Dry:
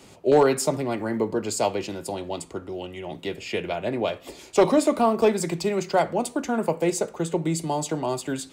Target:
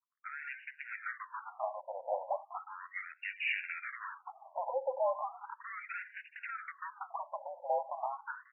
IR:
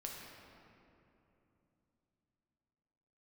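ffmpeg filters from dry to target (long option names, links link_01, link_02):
-filter_complex "[0:a]aeval=exprs='if(lt(val(0),0),0.708*val(0),val(0))':channel_layout=same,afftfilt=real='re*gte(hypot(re,im),0.00794)':imag='im*gte(hypot(re,im),0.00794)':win_size=1024:overlap=0.75,acompressor=threshold=-30dB:ratio=12,asoftclip=type=tanh:threshold=-34dB,highpass=frequency=490:width_type=q:width=0.5412,highpass=frequency=490:width_type=q:width=1.307,lowpass=frequency=2800:width_type=q:width=0.5176,lowpass=frequency=2800:width_type=q:width=0.7071,lowpass=frequency=2800:width_type=q:width=1.932,afreqshift=-75,asplit=4[link_01][link_02][link_03][link_04];[link_02]adelay=424,afreqshift=-110,volume=-18dB[link_05];[link_03]adelay=848,afreqshift=-220,volume=-27.4dB[link_06];[link_04]adelay=1272,afreqshift=-330,volume=-36.7dB[link_07];[link_01][link_05][link_06][link_07]amix=inputs=4:normalize=0,afftfilt=real='re*between(b*sr/1024,700*pow(2100/700,0.5+0.5*sin(2*PI*0.36*pts/sr))/1.41,700*pow(2100/700,0.5+0.5*sin(2*PI*0.36*pts/sr))*1.41)':imag='im*between(b*sr/1024,700*pow(2100/700,0.5+0.5*sin(2*PI*0.36*pts/sr))/1.41,700*pow(2100/700,0.5+0.5*sin(2*PI*0.36*pts/sr))*1.41)':win_size=1024:overlap=0.75,volume=10.5dB"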